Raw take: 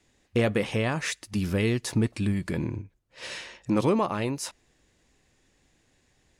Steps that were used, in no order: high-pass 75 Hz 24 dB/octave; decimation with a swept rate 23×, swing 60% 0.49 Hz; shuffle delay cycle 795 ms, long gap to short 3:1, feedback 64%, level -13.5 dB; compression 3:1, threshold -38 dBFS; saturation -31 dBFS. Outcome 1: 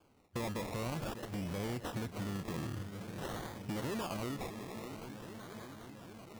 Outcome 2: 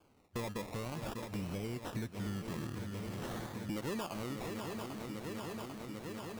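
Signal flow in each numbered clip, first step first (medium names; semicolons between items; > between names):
saturation > shuffle delay > compression > high-pass > decimation with a swept rate; high-pass > decimation with a swept rate > shuffle delay > compression > saturation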